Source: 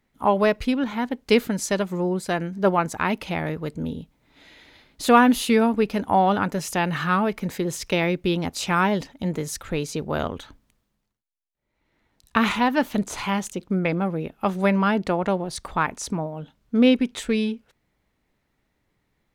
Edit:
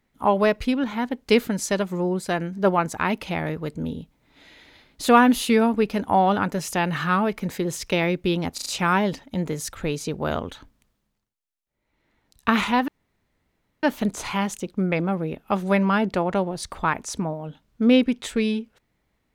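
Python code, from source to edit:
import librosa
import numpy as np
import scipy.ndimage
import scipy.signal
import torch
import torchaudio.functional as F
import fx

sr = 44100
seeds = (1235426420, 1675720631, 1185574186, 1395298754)

y = fx.edit(x, sr, fx.stutter(start_s=8.54, slice_s=0.04, count=4),
    fx.insert_room_tone(at_s=12.76, length_s=0.95), tone=tone)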